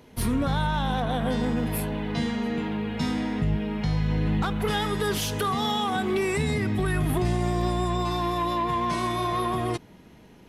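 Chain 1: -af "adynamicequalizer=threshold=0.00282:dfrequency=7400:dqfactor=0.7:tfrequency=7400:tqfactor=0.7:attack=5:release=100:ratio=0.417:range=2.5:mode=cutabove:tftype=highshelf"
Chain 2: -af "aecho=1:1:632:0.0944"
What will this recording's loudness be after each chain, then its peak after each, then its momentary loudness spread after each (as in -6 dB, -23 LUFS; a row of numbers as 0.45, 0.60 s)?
-26.5, -26.5 LUFS; -14.0, -13.5 dBFS; 3, 3 LU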